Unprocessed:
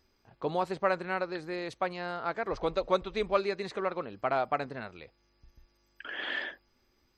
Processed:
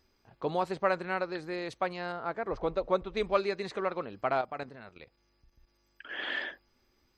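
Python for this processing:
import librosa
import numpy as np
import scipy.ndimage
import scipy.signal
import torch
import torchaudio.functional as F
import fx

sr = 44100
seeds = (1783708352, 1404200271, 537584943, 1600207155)

y = fx.high_shelf(x, sr, hz=2300.0, db=-10.5, at=(2.12, 3.17))
y = fx.level_steps(y, sr, step_db=12, at=(4.41, 6.1))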